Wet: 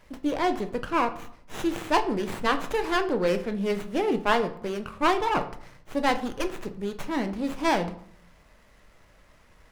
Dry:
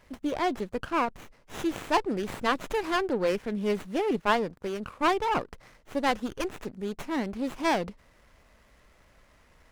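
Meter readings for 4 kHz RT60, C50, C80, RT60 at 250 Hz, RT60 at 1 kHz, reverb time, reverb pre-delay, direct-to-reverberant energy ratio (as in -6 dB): 0.40 s, 14.0 dB, 17.0 dB, 0.85 s, 0.65 s, 0.65 s, 5 ms, 7.5 dB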